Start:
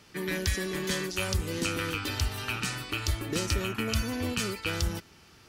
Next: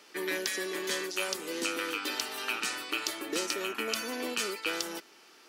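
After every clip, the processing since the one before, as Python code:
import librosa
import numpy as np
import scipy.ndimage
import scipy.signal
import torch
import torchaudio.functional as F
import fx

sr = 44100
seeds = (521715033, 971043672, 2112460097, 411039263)

y = scipy.signal.sosfilt(scipy.signal.butter(4, 300.0, 'highpass', fs=sr, output='sos'), x)
y = fx.rider(y, sr, range_db=10, speed_s=0.5)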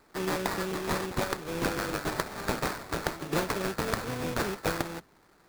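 y = fx.octave_divider(x, sr, octaves=1, level_db=1.0)
y = fx.sample_hold(y, sr, seeds[0], rate_hz=3000.0, jitter_pct=20)
y = fx.upward_expand(y, sr, threshold_db=-46.0, expansion=1.5)
y = F.gain(torch.from_numpy(y), 4.0).numpy()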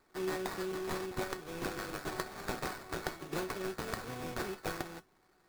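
y = fx.rider(x, sr, range_db=10, speed_s=0.5)
y = fx.comb_fb(y, sr, f0_hz=370.0, decay_s=0.16, harmonics='all', damping=0.0, mix_pct=70)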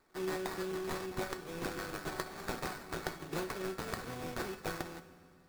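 y = fx.rev_fdn(x, sr, rt60_s=2.2, lf_ratio=1.5, hf_ratio=0.85, size_ms=35.0, drr_db=12.5)
y = F.gain(torch.from_numpy(y), -1.0).numpy()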